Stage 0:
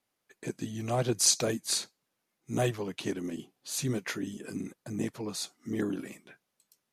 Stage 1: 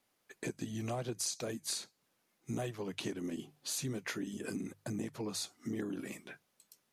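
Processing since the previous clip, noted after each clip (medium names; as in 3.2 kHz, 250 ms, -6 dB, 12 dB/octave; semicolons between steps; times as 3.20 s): hum notches 50/100/150 Hz; compression 6:1, threshold -40 dBFS, peak gain reduction 19 dB; trim +4 dB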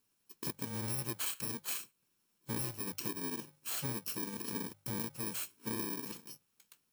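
bit-reversed sample order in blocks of 64 samples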